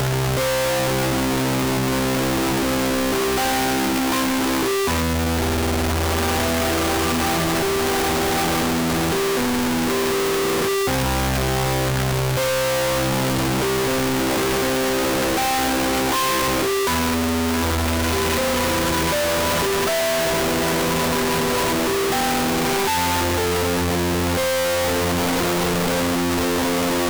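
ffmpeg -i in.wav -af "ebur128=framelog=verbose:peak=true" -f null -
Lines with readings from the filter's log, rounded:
Integrated loudness:
  I:         -19.9 LUFS
  Threshold: -29.9 LUFS
Loudness range:
  LRA:         0.7 LU
  Threshold: -39.9 LUFS
  LRA low:   -20.2 LUFS
  LRA high:  -19.5 LUFS
True peak:
  Peak:      -11.8 dBFS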